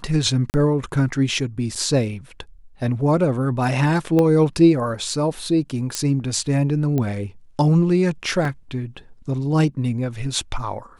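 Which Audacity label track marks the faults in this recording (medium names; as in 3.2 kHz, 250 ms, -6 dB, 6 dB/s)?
0.500000	0.540000	dropout 39 ms
1.750000	1.760000	dropout 6.5 ms
4.190000	4.190000	pop -9 dBFS
5.950000	5.950000	pop -8 dBFS
6.980000	6.980000	pop -12 dBFS
8.450000	8.450000	dropout 2.5 ms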